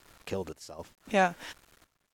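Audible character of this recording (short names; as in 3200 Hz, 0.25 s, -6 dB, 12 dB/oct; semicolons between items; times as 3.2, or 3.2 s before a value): a quantiser's noise floor 10-bit, dither none; random-step tremolo 3.8 Hz, depth 85%; SBC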